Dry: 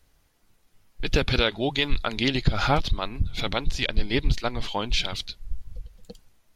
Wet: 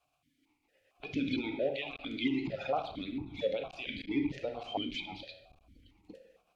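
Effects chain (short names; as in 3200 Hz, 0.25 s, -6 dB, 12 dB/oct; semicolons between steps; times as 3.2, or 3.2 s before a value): bin magnitudes rounded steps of 30 dB; added noise violet -60 dBFS; on a send at -6 dB: reverb RT60 0.90 s, pre-delay 7 ms; on the sum: limiter -16 dBFS, peak gain reduction 9 dB; dynamic EQ 1400 Hz, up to -8 dB, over -47 dBFS, Q 1.7; hard clip -18.5 dBFS, distortion -22 dB; vowel sequencer 4.4 Hz; gain +6 dB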